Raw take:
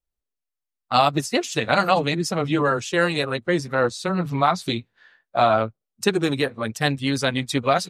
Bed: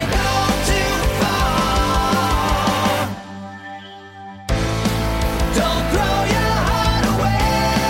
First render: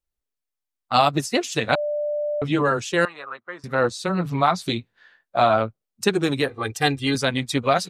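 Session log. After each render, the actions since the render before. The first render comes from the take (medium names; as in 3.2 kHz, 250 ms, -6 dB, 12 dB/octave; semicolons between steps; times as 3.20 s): 1.75–2.42 s: bleep 592 Hz -22 dBFS; 3.05–3.64 s: band-pass filter 1.2 kHz, Q 3.2; 6.48–7.15 s: comb 2.5 ms, depth 77%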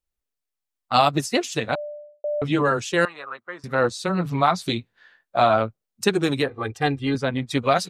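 1.40–2.24 s: studio fade out; 6.42–7.50 s: low-pass 2.1 kHz -> 1.1 kHz 6 dB/octave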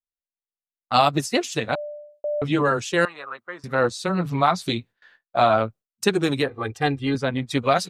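gate with hold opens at -45 dBFS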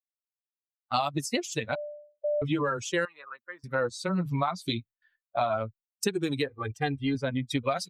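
expander on every frequency bin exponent 1.5; compression 6:1, threshold -24 dBFS, peak gain reduction 10 dB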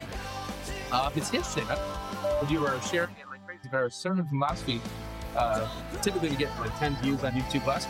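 add bed -19 dB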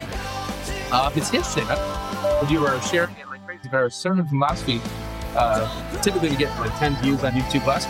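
trim +7.5 dB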